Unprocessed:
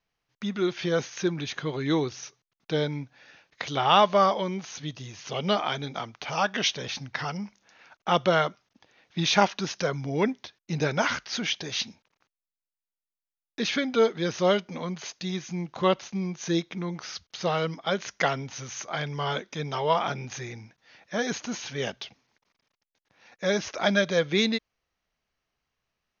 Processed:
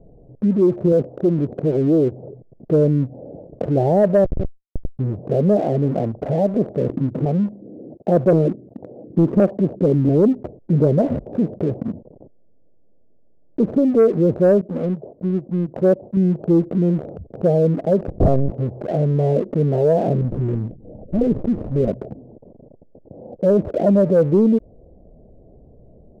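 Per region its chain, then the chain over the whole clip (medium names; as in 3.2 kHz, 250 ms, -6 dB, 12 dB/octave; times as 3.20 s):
0.92–2.24 s: companding laws mixed up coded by A + high-pass 130 Hz 6 dB/octave + transformer saturation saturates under 720 Hz
4.24–4.99 s: hum notches 60/120/180/240/300/360/420/480/540 Hz + compression 16:1, threshold -29 dBFS + Schmitt trigger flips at -27 dBFS
6.54–10.09 s: high-pass 110 Hz + LFO low-pass square 1.4 Hz 330–3900 Hz + loudspeaker Doppler distortion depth 0.28 ms
14.61–16.17 s: bass shelf 83 Hz -7.5 dB + upward expansion, over -43 dBFS
18.08–18.52 s: square wave that keeps the level + resonant low-pass 2.1 kHz, resonance Q 5.5 + LPC vocoder at 8 kHz pitch kept
20.21–21.88 s: comb filter that takes the minimum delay 0.4 ms + step-sequenced notch 11 Hz 380–2000 Hz
whole clip: steep low-pass 620 Hz 48 dB/octave; waveshaping leveller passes 1; level flattener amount 50%; trim +5.5 dB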